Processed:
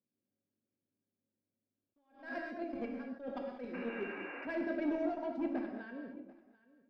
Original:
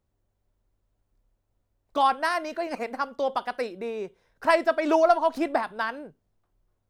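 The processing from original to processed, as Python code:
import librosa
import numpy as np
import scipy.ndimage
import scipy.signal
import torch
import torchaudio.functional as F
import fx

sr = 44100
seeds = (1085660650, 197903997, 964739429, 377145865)

y = scipy.signal.sosfilt(scipy.signal.butter(4, 150.0, 'highpass', fs=sr, output='sos'), x)
y = fx.peak_eq(y, sr, hz=1100.0, db=-13.0, octaves=1.5)
y = fx.leveller(y, sr, passes=1)
y = fx.level_steps(y, sr, step_db=15)
y = fx.spec_paint(y, sr, seeds[0], shape='noise', start_s=3.73, length_s=0.74, low_hz=270.0, high_hz=2900.0, level_db=-40.0)
y = fx.comb_fb(y, sr, f0_hz=550.0, decay_s=0.27, harmonics='odd', damping=0.0, mix_pct=80)
y = fx.small_body(y, sr, hz=(260.0, 1600.0, 2300.0), ring_ms=45, db=12)
y = 10.0 ** (-36.0 / 20.0) * np.tanh(y / 10.0 ** (-36.0 / 20.0))
y = fx.spacing_loss(y, sr, db_at_10k=33)
y = y + 10.0 ** (-21.5 / 20.0) * np.pad(y, (int(740 * sr / 1000.0), 0))[:len(y)]
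y = fx.rev_gated(y, sr, seeds[1], gate_ms=250, shape='flat', drr_db=2.5)
y = fx.attack_slew(y, sr, db_per_s=140.0)
y = F.gain(torch.from_numpy(y), 7.5).numpy()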